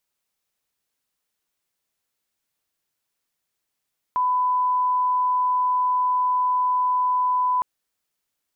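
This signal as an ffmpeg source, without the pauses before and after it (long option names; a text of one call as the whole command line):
ffmpeg -f lavfi -i "sine=frequency=1000:duration=3.46:sample_rate=44100,volume=0.06dB" out.wav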